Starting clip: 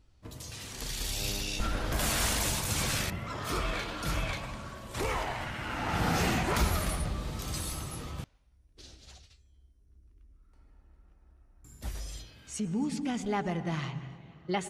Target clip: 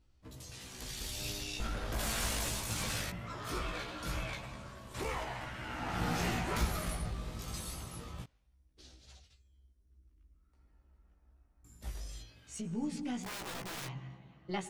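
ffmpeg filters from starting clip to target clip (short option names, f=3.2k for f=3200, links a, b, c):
-filter_complex "[0:a]asettb=1/sr,asplit=3[a][b][c];[a]atrim=end=13.224[d];[b]atrim=start=13.22:end=13.87,asetpts=PTS-STARTPTS,afade=t=in:d=0.004:c=qsin,afade=t=out:st=0.646:d=0.004:c=qsin,aeval=exprs='(mod(37.6*val(0)+1,2)-1)/37.6':c=same[e];[c]atrim=start=13.866[f];[d][e]acrossfade=d=0.004:c1=hsin:c2=qsin[g];[g][f]acrossfade=d=0.004:c1=qsin:c2=hsin,aeval=exprs='0.119*(cos(1*acos(clip(val(0)/0.119,-1,1)))-cos(1*PI/2))+0.00531*(cos(4*acos(clip(val(0)/0.119,-1,1)))-cos(4*PI/2))':c=same,flanger=delay=15.5:depth=2.2:speed=0.21,volume=-3dB"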